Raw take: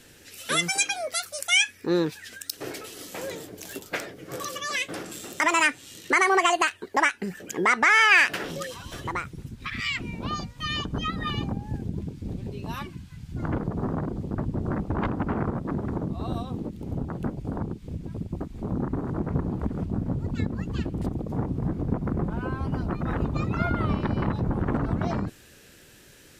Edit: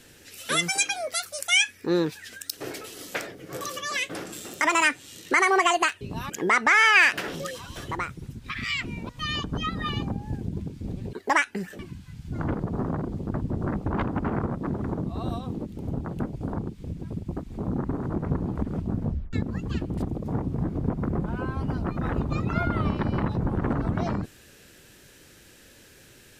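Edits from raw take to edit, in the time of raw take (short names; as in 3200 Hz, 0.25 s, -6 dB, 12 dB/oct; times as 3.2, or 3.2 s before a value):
3.15–3.94 cut
6.8–7.46 swap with 12.54–12.83
10.25–10.5 cut
20.07 tape stop 0.30 s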